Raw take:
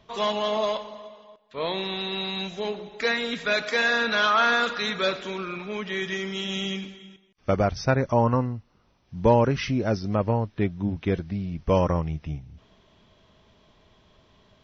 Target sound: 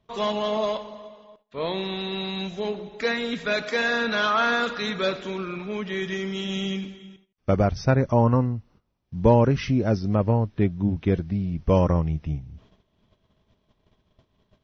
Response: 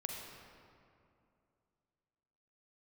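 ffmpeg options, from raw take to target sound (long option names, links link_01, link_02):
-af "agate=range=-14dB:threshold=-56dB:ratio=16:detection=peak,lowshelf=frequency=490:gain=7,volume=-2.5dB"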